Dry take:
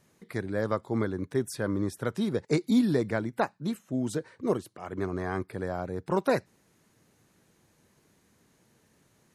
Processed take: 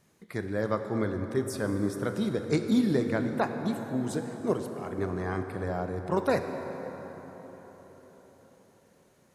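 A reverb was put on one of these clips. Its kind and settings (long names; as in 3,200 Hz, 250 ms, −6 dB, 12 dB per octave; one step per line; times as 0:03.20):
dense smooth reverb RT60 4.9 s, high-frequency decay 0.5×, DRR 5.5 dB
level −1 dB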